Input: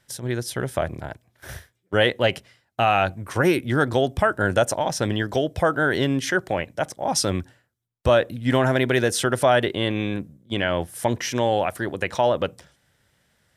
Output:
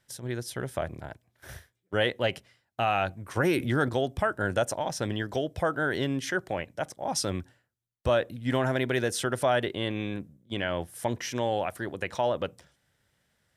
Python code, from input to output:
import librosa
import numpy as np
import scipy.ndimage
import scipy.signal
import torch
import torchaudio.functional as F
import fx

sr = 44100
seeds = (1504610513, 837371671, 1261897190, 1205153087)

y = fx.env_flatten(x, sr, amount_pct=50, at=(3.37, 3.89))
y = F.gain(torch.from_numpy(y), -7.0).numpy()